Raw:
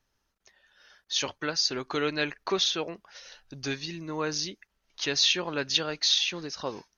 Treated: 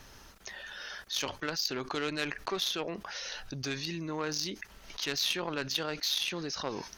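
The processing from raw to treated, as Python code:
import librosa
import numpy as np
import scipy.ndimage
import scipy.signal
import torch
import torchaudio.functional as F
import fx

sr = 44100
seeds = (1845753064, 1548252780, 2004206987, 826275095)

y = fx.cheby_harmonics(x, sr, harmonics=(4, 7), levels_db=(-42, -21), full_scale_db=-9.5)
y = fx.env_flatten(y, sr, amount_pct=70)
y = y * librosa.db_to_amplitude(-7.5)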